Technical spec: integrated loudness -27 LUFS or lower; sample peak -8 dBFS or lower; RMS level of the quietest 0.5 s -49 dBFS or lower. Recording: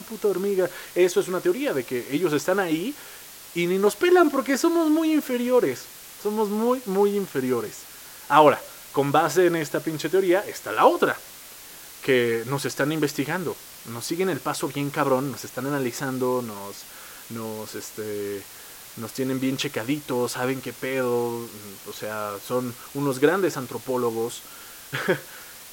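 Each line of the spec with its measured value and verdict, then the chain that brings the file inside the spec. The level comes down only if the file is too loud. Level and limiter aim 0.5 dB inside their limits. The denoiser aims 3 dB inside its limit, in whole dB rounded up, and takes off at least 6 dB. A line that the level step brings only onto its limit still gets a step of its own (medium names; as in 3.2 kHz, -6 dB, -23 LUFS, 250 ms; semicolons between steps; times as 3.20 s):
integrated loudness -24.5 LUFS: fail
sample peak -3.0 dBFS: fail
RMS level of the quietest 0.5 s -43 dBFS: fail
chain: noise reduction 6 dB, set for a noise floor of -43 dBFS; trim -3 dB; peak limiter -8.5 dBFS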